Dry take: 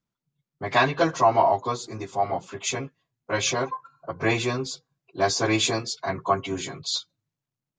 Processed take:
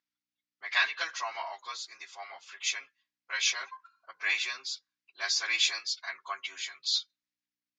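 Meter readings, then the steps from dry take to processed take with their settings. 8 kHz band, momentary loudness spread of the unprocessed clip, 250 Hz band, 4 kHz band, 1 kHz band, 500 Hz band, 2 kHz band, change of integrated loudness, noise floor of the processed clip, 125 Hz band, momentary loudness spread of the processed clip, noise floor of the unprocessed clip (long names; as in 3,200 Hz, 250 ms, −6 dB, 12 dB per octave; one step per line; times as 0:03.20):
−4.5 dB, 13 LU, below −35 dB, −0.5 dB, −16.0 dB, −24.5 dB, −1.5 dB, −6.0 dB, below −85 dBFS, below −40 dB, 17 LU, below −85 dBFS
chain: mains hum 60 Hz, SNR 27 dB
Chebyshev band-pass filter 1,800–5,500 Hz, order 2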